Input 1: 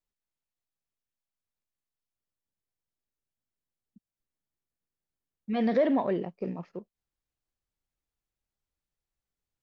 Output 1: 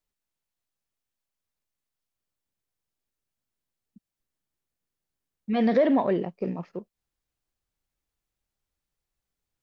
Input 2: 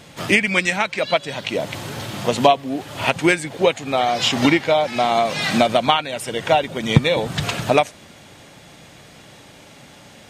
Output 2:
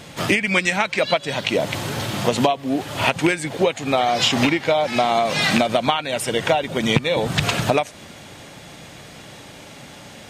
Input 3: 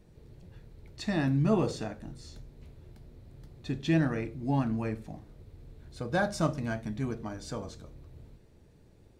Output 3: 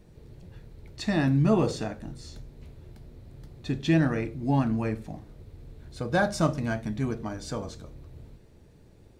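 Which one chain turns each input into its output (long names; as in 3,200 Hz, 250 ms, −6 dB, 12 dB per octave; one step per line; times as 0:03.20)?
loose part that buzzes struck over −17 dBFS, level −5 dBFS
downward compressor 10 to 1, threshold −18 dBFS
level +4 dB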